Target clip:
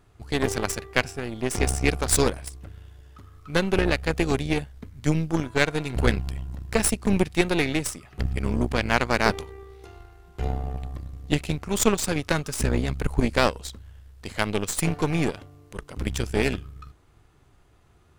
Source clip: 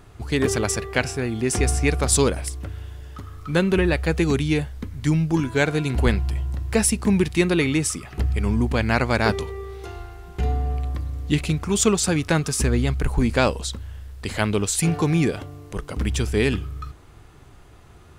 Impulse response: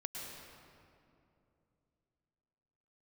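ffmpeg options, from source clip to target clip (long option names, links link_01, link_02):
-af "acontrast=72,aeval=exprs='0.841*(cos(1*acos(clip(val(0)/0.841,-1,1)))-cos(1*PI/2))+0.237*(cos(2*acos(clip(val(0)/0.841,-1,1)))-cos(2*PI/2))+0.188*(cos(3*acos(clip(val(0)/0.841,-1,1)))-cos(3*PI/2))+0.015*(cos(7*acos(clip(val(0)/0.841,-1,1)))-cos(7*PI/2))':channel_layout=same,volume=-3.5dB"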